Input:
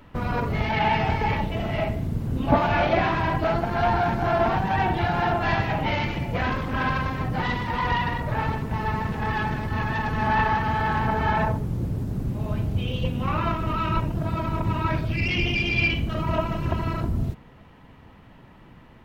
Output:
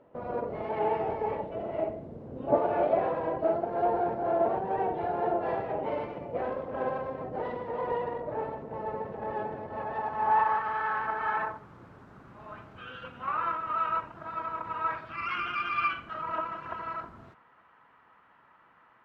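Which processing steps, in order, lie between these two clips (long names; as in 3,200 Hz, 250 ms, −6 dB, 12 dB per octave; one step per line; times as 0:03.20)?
pitch-shifted copies added −12 semitones −5 dB
band-pass filter sweep 540 Hz → 1,300 Hz, 0:09.58–0:10.76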